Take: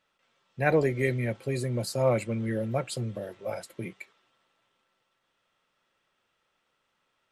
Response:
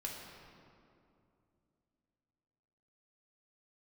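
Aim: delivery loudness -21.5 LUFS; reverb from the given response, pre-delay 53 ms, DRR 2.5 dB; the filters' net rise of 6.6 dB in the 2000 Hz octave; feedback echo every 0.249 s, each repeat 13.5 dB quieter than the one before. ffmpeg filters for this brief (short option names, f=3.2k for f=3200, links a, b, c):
-filter_complex "[0:a]equalizer=f=2k:t=o:g=8,aecho=1:1:249|498:0.211|0.0444,asplit=2[a][b];[1:a]atrim=start_sample=2205,adelay=53[c];[b][c]afir=irnorm=-1:irlink=0,volume=-2.5dB[d];[a][d]amix=inputs=2:normalize=0,volume=4.5dB"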